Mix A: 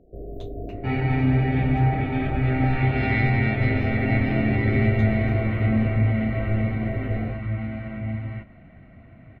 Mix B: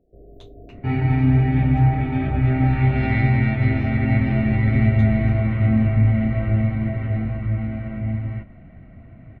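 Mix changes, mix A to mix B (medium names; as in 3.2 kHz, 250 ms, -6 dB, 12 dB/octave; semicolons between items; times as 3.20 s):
first sound -9.5 dB; second sound: add tilt EQ -1.5 dB/octave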